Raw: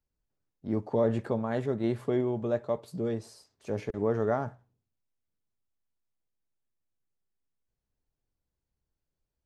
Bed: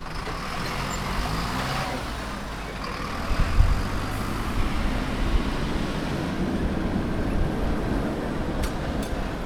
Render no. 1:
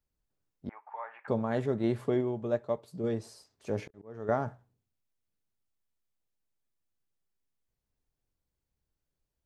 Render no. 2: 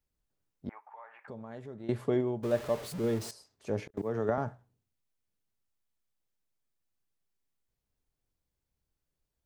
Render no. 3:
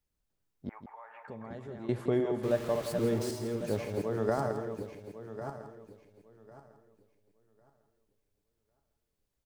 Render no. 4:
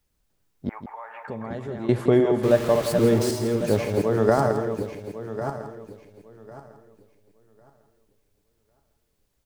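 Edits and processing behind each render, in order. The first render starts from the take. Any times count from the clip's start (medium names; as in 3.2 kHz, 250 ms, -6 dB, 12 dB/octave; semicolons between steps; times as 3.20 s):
0.69–1.28 s: Chebyshev band-pass 840–2400 Hz, order 3; 2.14–3.04 s: upward expansion, over -35 dBFS; 3.69–4.29 s: slow attack 752 ms
0.83–1.89 s: compression 2:1, threshold -52 dBFS; 2.43–3.31 s: jump at every zero crossing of -38 dBFS; 3.97–4.38 s: three bands compressed up and down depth 100%
backward echo that repeats 550 ms, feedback 46%, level -5.5 dB; delay 166 ms -10.5 dB
trim +10.5 dB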